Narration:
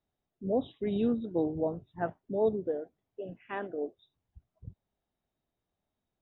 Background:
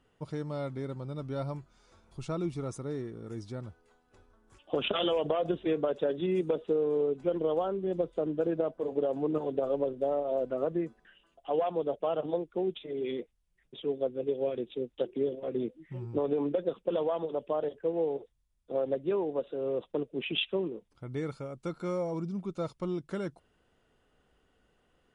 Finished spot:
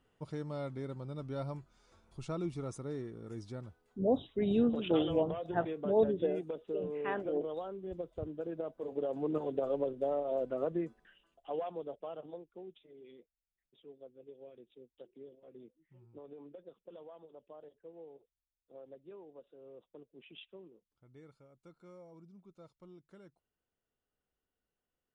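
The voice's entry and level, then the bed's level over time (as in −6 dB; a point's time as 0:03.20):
3.55 s, 0.0 dB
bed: 0:03.55 −4 dB
0:04.04 −10.5 dB
0:08.44 −10.5 dB
0:09.34 −3.5 dB
0:11.03 −3.5 dB
0:13.07 −21.5 dB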